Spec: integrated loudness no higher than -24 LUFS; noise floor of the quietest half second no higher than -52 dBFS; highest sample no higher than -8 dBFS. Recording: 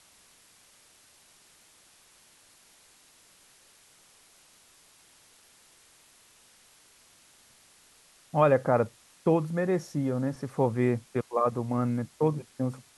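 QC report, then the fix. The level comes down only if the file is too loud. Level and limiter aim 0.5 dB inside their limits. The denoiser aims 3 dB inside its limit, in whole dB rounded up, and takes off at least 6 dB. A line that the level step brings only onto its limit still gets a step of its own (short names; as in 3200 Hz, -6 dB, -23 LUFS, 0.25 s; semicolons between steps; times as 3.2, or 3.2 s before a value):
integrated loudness -28.0 LUFS: OK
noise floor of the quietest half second -59 dBFS: OK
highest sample -10.0 dBFS: OK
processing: none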